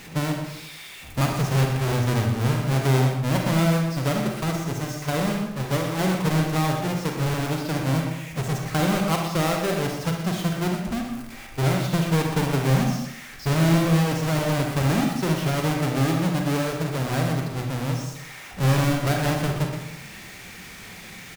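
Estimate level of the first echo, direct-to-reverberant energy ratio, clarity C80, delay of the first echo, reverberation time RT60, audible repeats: -9.5 dB, 1.0 dB, 5.0 dB, 0.122 s, 0.80 s, 1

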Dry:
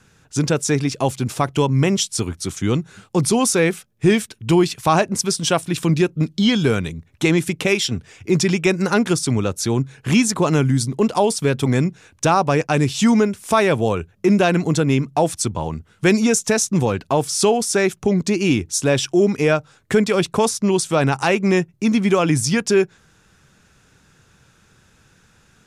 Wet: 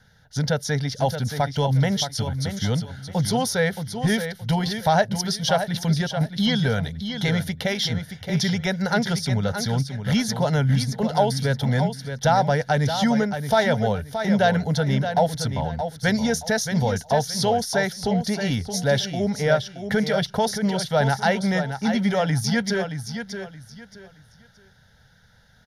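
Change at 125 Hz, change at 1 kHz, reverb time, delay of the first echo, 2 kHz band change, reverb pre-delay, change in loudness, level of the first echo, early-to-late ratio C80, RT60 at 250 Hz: -1.5 dB, -2.0 dB, none, 0.623 s, -2.5 dB, none, -4.0 dB, -8.5 dB, none, none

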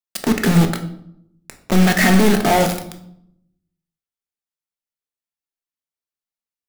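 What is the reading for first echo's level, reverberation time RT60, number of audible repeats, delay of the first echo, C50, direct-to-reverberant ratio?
none, 0.75 s, none, none, 10.5 dB, 5.0 dB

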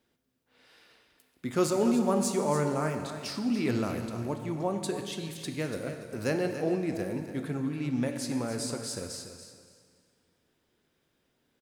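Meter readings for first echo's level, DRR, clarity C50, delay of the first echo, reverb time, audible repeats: -10.5 dB, 4.5 dB, 5.5 dB, 0.287 s, 1.9 s, 2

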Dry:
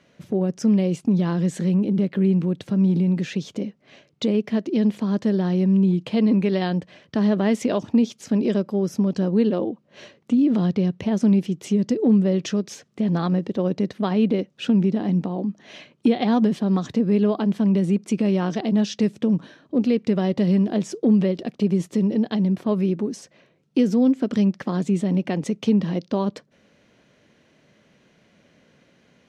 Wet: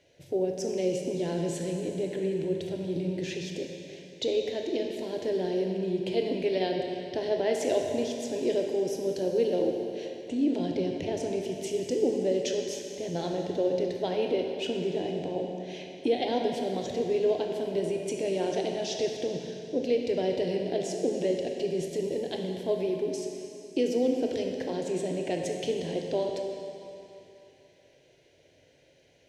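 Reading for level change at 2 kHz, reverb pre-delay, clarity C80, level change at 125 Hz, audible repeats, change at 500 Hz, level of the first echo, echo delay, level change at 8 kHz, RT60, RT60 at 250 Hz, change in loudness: -5.0 dB, 20 ms, 3.5 dB, -15.5 dB, none, -1.0 dB, none, none, n/a, 2.8 s, 2.8 s, -8.5 dB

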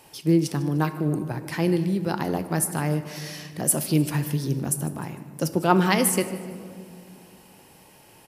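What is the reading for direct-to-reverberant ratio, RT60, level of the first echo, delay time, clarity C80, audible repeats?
9.0 dB, 2.3 s, -18.0 dB, 0.151 s, 11.5 dB, 3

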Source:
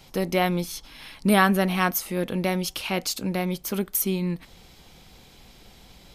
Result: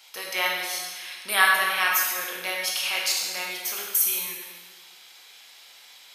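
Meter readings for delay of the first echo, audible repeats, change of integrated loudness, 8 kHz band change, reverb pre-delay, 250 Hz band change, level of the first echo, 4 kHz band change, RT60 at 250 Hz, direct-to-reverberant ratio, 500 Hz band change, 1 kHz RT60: none, none, +1.0 dB, +5.5 dB, 14 ms, -23.5 dB, none, +6.0 dB, 1.6 s, -2.5 dB, -10.5 dB, 1.4 s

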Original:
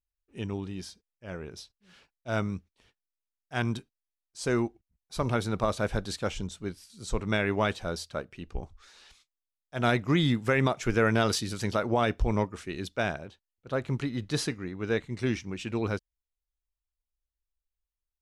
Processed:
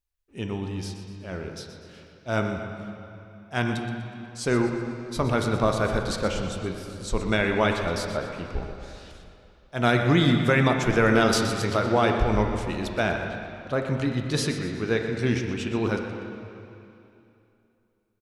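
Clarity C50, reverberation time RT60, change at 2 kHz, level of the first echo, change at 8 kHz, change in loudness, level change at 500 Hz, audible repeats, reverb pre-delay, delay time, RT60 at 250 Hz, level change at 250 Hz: 4.0 dB, 2.8 s, +5.5 dB, -12.0 dB, +4.0 dB, +4.5 dB, +5.0 dB, 1, 6 ms, 0.122 s, 2.8 s, +5.0 dB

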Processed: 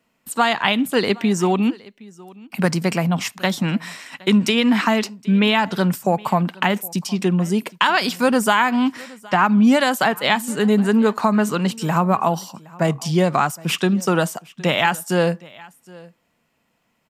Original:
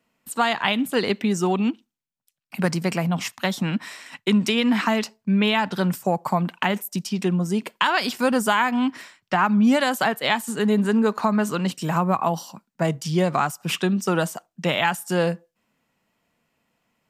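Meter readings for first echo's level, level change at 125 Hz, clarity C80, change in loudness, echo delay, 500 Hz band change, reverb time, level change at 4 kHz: -23.0 dB, +3.5 dB, none, +3.5 dB, 0.766 s, +3.5 dB, none, +3.5 dB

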